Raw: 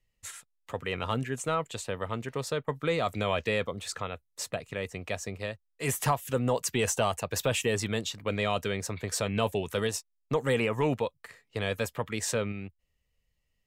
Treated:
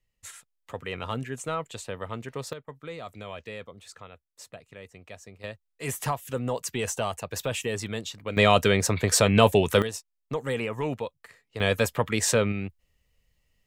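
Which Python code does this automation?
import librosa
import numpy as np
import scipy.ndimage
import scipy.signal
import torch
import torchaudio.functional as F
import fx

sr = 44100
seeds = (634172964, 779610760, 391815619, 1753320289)

y = fx.gain(x, sr, db=fx.steps((0.0, -1.5), (2.53, -10.5), (5.44, -2.0), (8.37, 10.0), (9.82, -2.5), (11.6, 7.0)))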